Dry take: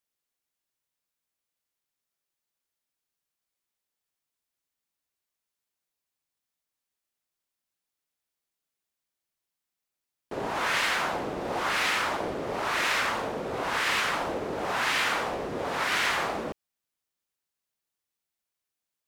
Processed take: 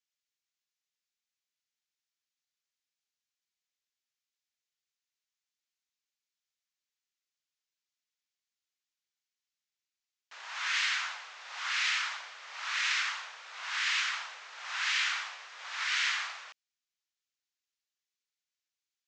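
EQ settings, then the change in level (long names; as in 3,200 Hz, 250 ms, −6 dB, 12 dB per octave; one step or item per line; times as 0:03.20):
Bessel high-pass filter 2,000 Hz, order 4
Butterworth low-pass 7,200 Hz 48 dB per octave
0.0 dB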